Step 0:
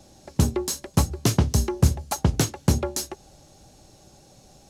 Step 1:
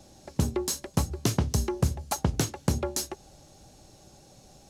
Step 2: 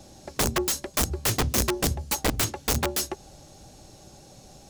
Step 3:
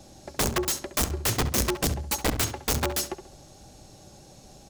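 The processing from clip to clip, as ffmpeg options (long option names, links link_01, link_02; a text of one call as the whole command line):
ffmpeg -i in.wav -af "acompressor=threshold=-21dB:ratio=2.5,volume=-1.5dB" out.wav
ffmpeg -i in.wav -af "aeval=exprs='(mod(12.6*val(0)+1,2)-1)/12.6':channel_layout=same,volume=4.5dB" out.wav
ffmpeg -i in.wav -filter_complex "[0:a]asplit=2[link_01][link_02];[link_02]adelay=68,lowpass=frequency=3000:poles=1,volume=-10.5dB,asplit=2[link_03][link_04];[link_04]adelay=68,lowpass=frequency=3000:poles=1,volume=0.38,asplit=2[link_05][link_06];[link_06]adelay=68,lowpass=frequency=3000:poles=1,volume=0.38,asplit=2[link_07][link_08];[link_08]adelay=68,lowpass=frequency=3000:poles=1,volume=0.38[link_09];[link_01][link_03][link_05][link_07][link_09]amix=inputs=5:normalize=0,volume=-1dB" out.wav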